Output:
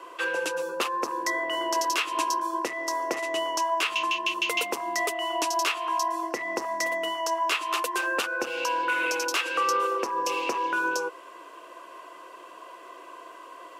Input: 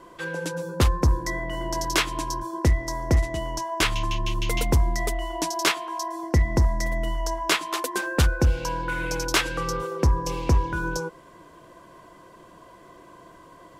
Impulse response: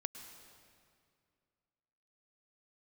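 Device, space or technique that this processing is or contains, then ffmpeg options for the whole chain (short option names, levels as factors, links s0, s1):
laptop speaker: -af "highpass=f=360:w=0.5412,highpass=f=360:w=1.3066,equalizer=f=1200:t=o:w=0.47:g=6,equalizer=f=2700:t=o:w=0.3:g=11,alimiter=limit=0.126:level=0:latency=1:release=179,volume=1.33"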